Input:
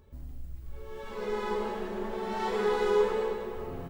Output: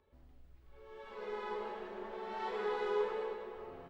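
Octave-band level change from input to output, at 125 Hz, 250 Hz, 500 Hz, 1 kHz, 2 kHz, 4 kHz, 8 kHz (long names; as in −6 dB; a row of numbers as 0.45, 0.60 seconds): below −15 dB, −13.0 dB, −9.0 dB, −7.0 dB, −7.0 dB, −9.0 dB, can't be measured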